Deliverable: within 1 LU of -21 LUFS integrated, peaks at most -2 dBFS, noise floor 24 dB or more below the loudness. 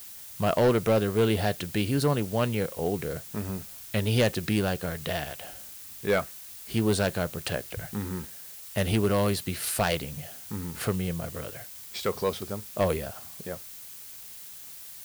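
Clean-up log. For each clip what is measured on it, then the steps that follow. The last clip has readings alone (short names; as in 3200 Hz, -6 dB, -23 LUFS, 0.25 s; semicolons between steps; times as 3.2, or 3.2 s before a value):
clipped 0.5%; flat tops at -17.0 dBFS; noise floor -44 dBFS; noise floor target -53 dBFS; loudness -28.5 LUFS; peak -17.0 dBFS; loudness target -21.0 LUFS
-> clip repair -17 dBFS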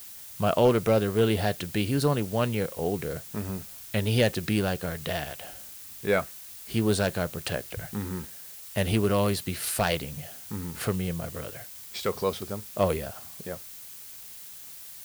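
clipped 0.0%; noise floor -44 dBFS; noise floor target -53 dBFS
-> noise print and reduce 9 dB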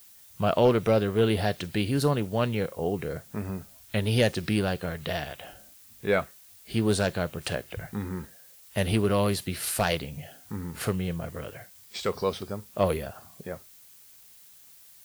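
noise floor -53 dBFS; loudness -28.0 LUFS; peak -9.5 dBFS; loudness target -21.0 LUFS
-> gain +7 dB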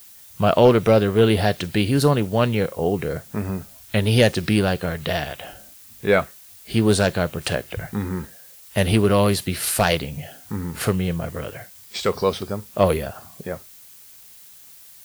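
loudness -21.0 LUFS; peak -2.5 dBFS; noise floor -46 dBFS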